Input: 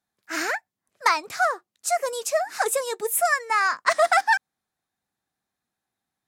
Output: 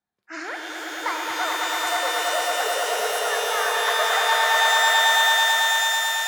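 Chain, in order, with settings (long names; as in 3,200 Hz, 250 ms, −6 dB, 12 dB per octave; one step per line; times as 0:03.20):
in parallel at 0 dB: downward compressor, threshold −27 dBFS, peak gain reduction 12 dB
on the sum: gate on every frequency bin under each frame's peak −25 dB strong
high-shelf EQ 5,300 Hz −11 dB
tuned comb filter 180 Hz, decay 1.7 s, mix 70%
on a send: echo that builds up and dies away 110 ms, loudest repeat 5, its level −5.5 dB
on the sum: reverb with rising layers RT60 3.8 s, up +12 semitones, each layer −2 dB, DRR 2.5 dB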